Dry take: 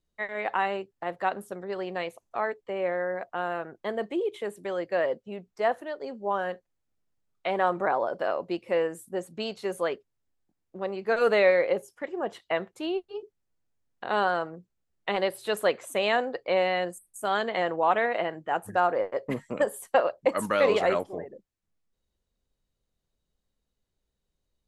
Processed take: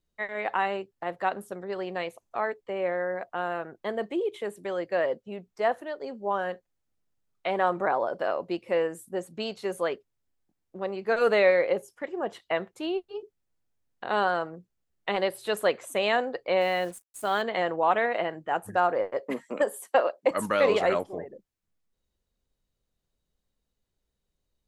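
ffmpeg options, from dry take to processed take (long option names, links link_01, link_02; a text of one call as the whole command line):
ffmpeg -i in.wav -filter_complex "[0:a]asplit=3[link_01][link_02][link_03];[link_01]afade=type=out:start_time=16.6:duration=0.02[link_04];[link_02]acrusher=bits=7:mix=0:aa=0.5,afade=type=in:start_time=16.6:duration=0.02,afade=type=out:start_time=17.41:duration=0.02[link_05];[link_03]afade=type=in:start_time=17.41:duration=0.02[link_06];[link_04][link_05][link_06]amix=inputs=3:normalize=0,asettb=1/sr,asplit=3[link_07][link_08][link_09];[link_07]atrim=end=19.204[link_10];[link_08]atrim=start=19.2:end=20.31,asetpts=PTS-STARTPTS,afade=type=in:duration=0.004:curve=qsin,afade=type=out:start_time=1.106:duration=0.004:curve=qsin,highpass=frequency=220:width=0.5412,highpass=frequency=220:width=1.3066[link_11];[link_09]atrim=start=20.306[link_12];[link_10][link_11]acrossfade=duration=0.004:curve1=hsin:curve2=qsin[link_13];[link_13][link_12]acrossfade=duration=0.004:curve1=qsin:curve2=hsin" out.wav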